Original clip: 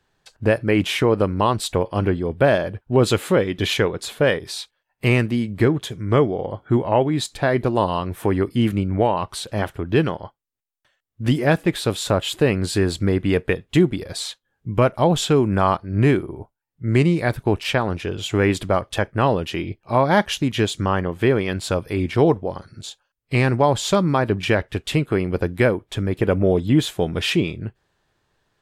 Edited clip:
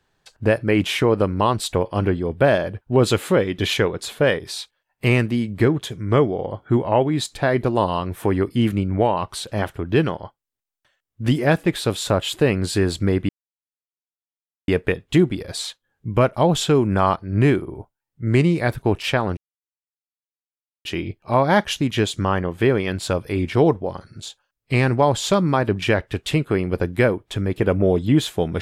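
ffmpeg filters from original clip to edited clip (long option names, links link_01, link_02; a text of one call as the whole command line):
ffmpeg -i in.wav -filter_complex "[0:a]asplit=4[link_01][link_02][link_03][link_04];[link_01]atrim=end=13.29,asetpts=PTS-STARTPTS,afade=type=out:start_time=13.286:duration=0.004:curve=hsin,apad=pad_dur=1.39[link_05];[link_02]atrim=start=13.29:end=17.98,asetpts=PTS-STARTPTS,afade=type=in:duration=0.004:curve=hsin,afade=type=out:start_time=4.686:duration=0.004:curve=hsin[link_06];[link_03]atrim=start=17.98:end=19.46,asetpts=PTS-STARTPTS,volume=0[link_07];[link_04]atrim=start=19.46,asetpts=PTS-STARTPTS,afade=type=in:duration=0.004:curve=hsin[link_08];[link_05][link_06][link_07][link_08]concat=n=4:v=0:a=1" out.wav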